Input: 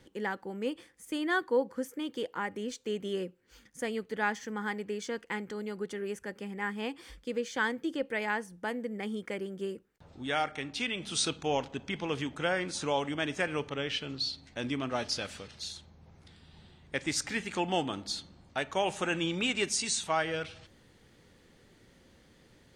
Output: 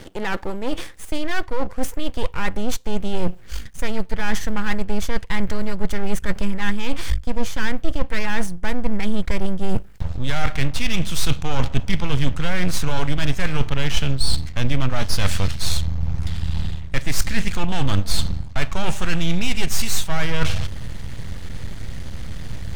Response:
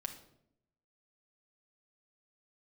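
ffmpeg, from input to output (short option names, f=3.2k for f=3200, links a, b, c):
-af "apsyclip=24.5dB,areverse,acompressor=threshold=-19dB:ratio=8,areverse,aeval=exprs='max(val(0),0)':c=same,asubboost=boost=7.5:cutoff=120"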